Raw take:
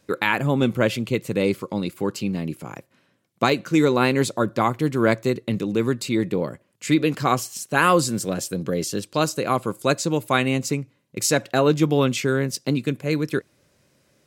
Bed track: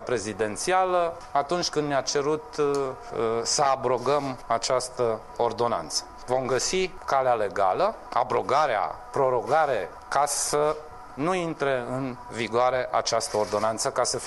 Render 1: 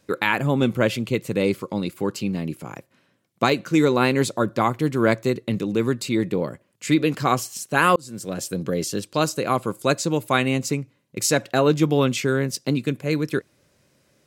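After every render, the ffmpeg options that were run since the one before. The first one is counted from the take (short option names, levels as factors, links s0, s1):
-filter_complex "[0:a]asplit=2[s0][s1];[s0]atrim=end=7.96,asetpts=PTS-STARTPTS,afade=t=out:st=7.956:d=0.004:c=hsin[s2];[s1]atrim=start=7.96,asetpts=PTS-STARTPTS,afade=t=in:d=0.54[s3];[s2][s3]concat=n=2:v=0:a=1"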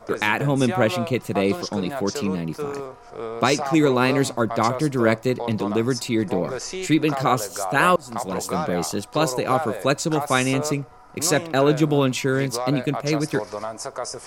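-filter_complex "[1:a]volume=0.531[s0];[0:a][s0]amix=inputs=2:normalize=0"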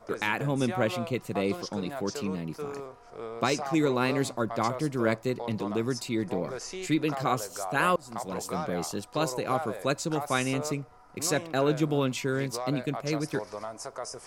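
-af "volume=0.422"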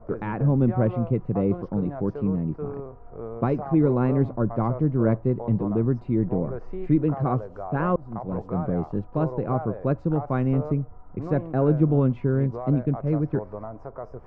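-af "lowpass=1200,aemphasis=mode=reproduction:type=riaa"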